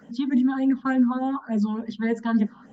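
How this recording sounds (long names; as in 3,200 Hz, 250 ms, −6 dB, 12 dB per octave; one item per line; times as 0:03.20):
phaser sweep stages 6, 3.4 Hz, lowest notch 530–1,300 Hz
Opus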